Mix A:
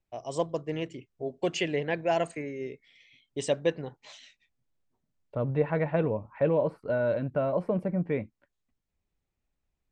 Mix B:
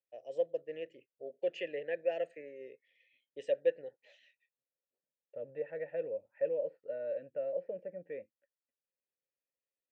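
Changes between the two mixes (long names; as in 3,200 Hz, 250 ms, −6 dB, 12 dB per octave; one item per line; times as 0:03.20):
second voice −3.5 dB
master: add formant filter e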